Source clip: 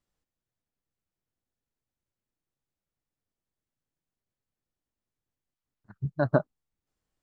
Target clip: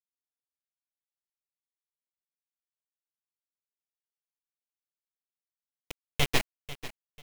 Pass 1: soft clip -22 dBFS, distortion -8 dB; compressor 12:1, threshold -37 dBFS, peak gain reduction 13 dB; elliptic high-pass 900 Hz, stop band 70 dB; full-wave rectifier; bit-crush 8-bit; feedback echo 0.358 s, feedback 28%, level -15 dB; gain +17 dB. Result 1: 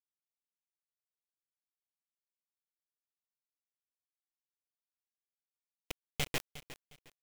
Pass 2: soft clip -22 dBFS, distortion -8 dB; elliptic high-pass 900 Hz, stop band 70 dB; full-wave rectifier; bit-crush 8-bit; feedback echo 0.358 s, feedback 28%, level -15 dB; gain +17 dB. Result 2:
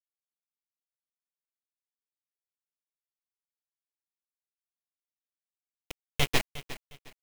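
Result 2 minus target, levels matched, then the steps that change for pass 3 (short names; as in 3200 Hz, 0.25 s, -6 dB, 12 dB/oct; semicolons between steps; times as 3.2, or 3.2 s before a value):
echo 0.135 s early
change: feedback echo 0.493 s, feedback 28%, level -15 dB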